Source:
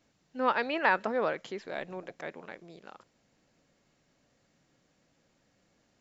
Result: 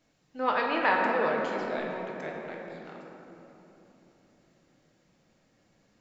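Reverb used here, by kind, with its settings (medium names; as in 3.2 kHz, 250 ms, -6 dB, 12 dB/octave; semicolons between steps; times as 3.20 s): simulated room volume 210 m³, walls hard, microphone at 0.57 m; trim -1 dB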